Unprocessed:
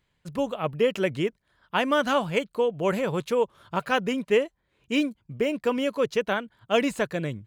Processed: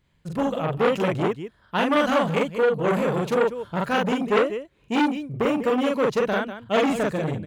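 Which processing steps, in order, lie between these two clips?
low-shelf EQ 430 Hz +6.5 dB
loudspeakers that aren't time-aligned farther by 15 metres −1 dB, 67 metres −12 dB
saturating transformer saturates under 1,300 Hz

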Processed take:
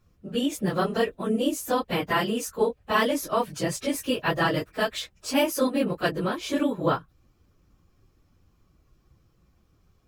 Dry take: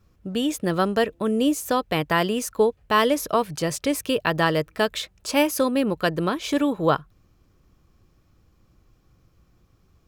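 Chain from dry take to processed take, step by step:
random phases in long frames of 50 ms
level −3 dB

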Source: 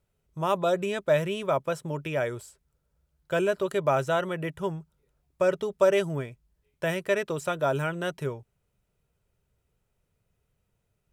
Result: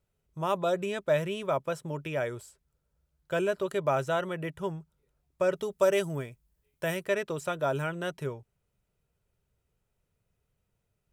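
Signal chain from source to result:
0:05.54–0:07.04: high-shelf EQ 6,500 Hz → 9,400 Hz +10 dB
level −3 dB

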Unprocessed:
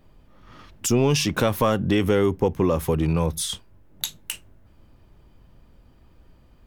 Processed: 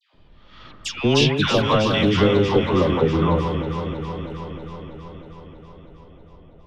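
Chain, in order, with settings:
all-pass dispersion lows, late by 142 ms, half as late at 1,100 Hz
low-pass filter sweep 3,700 Hz → 650 Hz, 0:02.09–0:04.02
delay that swaps between a low-pass and a high-pass 160 ms, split 1,900 Hz, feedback 84%, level −5.5 dB
tape wow and flutter 27 cents
level +1 dB

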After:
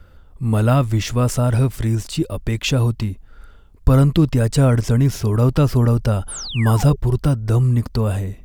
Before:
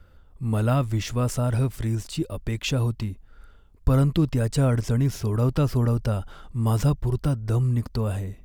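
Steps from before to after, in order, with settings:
sound drawn into the spectrogram fall, 0:06.28–0:06.96, 380–11,000 Hz −37 dBFS
level +6.5 dB

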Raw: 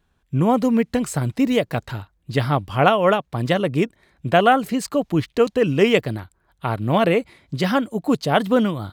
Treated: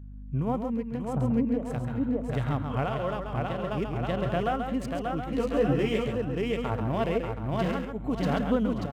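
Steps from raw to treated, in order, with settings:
adaptive Wiener filter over 9 samples
0:01.14–0:01.69: low-pass filter 1,100 Hz 24 dB per octave
repeating echo 586 ms, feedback 29%, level −4 dB
downward compressor, threshold −18 dBFS, peak gain reduction 8.5 dB
mains hum 50 Hz, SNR 11 dB
sample-and-hold tremolo
single-tap delay 136 ms −7.5 dB
harmonic and percussive parts rebalanced percussive −8 dB
0:05.26–0:06.15: double-tracking delay 14 ms −2 dB
level −2 dB

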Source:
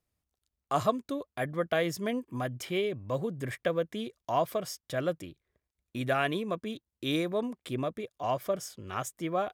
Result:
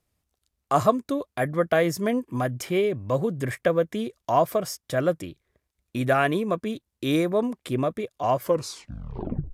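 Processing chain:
turntable brake at the end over 1.16 s
dynamic equaliser 3,300 Hz, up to −7 dB, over −51 dBFS, Q 1.4
level +7.5 dB
Ogg Vorbis 96 kbit/s 32,000 Hz

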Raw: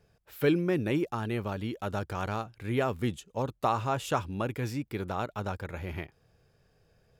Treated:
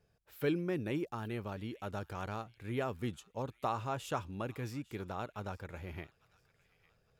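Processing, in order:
delay with a high-pass on its return 853 ms, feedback 34%, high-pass 1,800 Hz, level −18.5 dB
level −7.5 dB

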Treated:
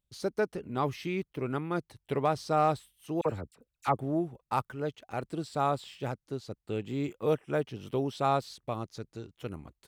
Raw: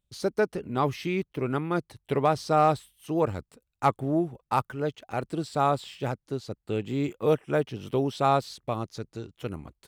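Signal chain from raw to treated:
0:03.21–0:03.99: all-pass dispersion lows, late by 46 ms, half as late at 1,700 Hz
level −4.5 dB

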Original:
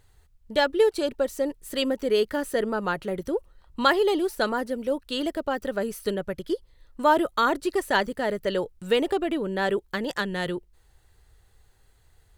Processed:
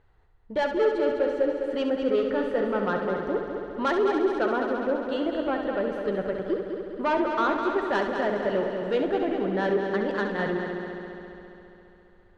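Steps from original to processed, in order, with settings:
low-pass filter 1,800 Hz 12 dB per octave
low-shelf EQ 170 Hz −5.5 dB
in parallel at −1 dB: brickwall limiter −17.5 dBFS, peak gain reduction 9.5 dB
on the sum: soft clipping −14.5 dBFS, distortion −16 dB
flanger 1.5 Hz, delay 4.4 ms, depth 4.1 ms, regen −68%
on a send: echo machine with several playback heads 68 ms, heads first and third, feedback 74%, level −8 dB

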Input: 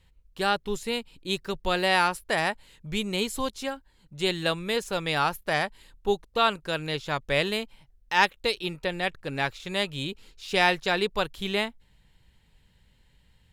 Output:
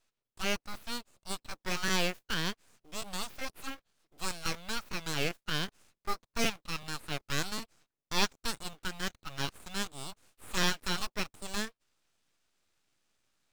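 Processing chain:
high-pass filter 68 Hz 24 dB per octave
three-way crossover with the lows and the highs turned down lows −15 dB, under 290 Hz, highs −19 dB, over 6,600 Hz
full-wave rectification
floating-point word with a short mantissa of 2 bits
formants moved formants +4 semitones
regular buffer underruns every 0.38 s, samples 512, repeat, from 0:00.35
level −5.5 dB

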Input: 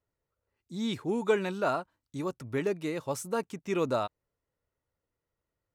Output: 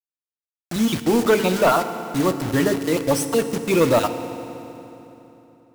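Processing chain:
time-frequency cells dropped at random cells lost 31%
notch filter 410 Hz, Q 12
0:00.76–0:03.19: high-pass filter 66 Hz 24 dB per octave
mains-hum notches 50/100/150/200/250/300 Hz
leveller curve on the samples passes 2
bit reduction 6 bits
feedback delay network reverb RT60 3.3 s, low-frequency decay 1.2×, high-frequency decay 0.8×, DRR 9 dB
level +7 dB

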